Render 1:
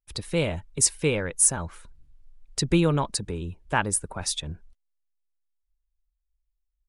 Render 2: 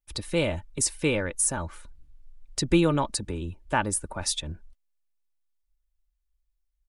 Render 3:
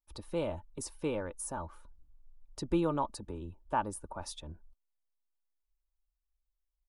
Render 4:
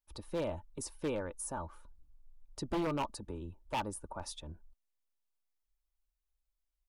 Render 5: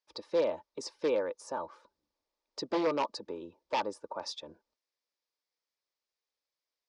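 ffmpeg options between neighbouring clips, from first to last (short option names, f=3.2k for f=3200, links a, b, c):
-filter_complex "[0:a]aecho=1:1:3.4:0.34,acrossover=split=870[a][b];[b]alimiter=limit=-14.5dB:level=0:latency=1:release=60[c];[a][c]amix=inputs=2:normalize=0"
-af "equalizer=f=125:t=o:w=1:g=-5,equalizer=f=1k:t=o:w=1:g=7,equalizer=f=2k:t=o:w=1:g=-11,equalizer=f=4k:t=o:w=1:g=-4,equalizer=f=8k:t=o:w=1:g=-10,volume=-8dB"
-af "aeval=exprs='0.0473*(abs(mod(val(0)/0.0473+3,4)-2)-1)':c=same,volume=-1dB"
-af "highpass=380,equalizer=f=490:t=q:w=4:g=6,equalizer=f=750:t=q:w=4:g=-4,equalizer=f=1.4k:t=q:w=4:g=-5,equalizer=f=2.9k:t=q:w=4:g=-5,equalizer=f=5k:t=q:w=4:g=5,lowpass=f=5.7k:w=0.5412,lowpass=f=5.7k:w=1.3066,volume=6dB"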